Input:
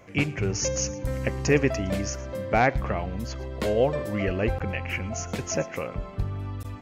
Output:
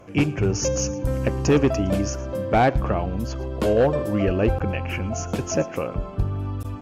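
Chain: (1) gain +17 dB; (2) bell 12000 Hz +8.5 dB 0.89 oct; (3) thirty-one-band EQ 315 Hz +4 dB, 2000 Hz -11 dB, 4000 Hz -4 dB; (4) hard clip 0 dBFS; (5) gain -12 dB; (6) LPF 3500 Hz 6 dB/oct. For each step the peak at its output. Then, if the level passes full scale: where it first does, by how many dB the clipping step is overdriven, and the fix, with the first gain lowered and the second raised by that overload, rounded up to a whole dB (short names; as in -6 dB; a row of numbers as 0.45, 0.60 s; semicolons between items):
+8.5, +8.5, +8.5, 0.0, -12.0, -12.0 dBFS; step 1, 8.5 dB; step 1 +8 dB, step 5 -3 dB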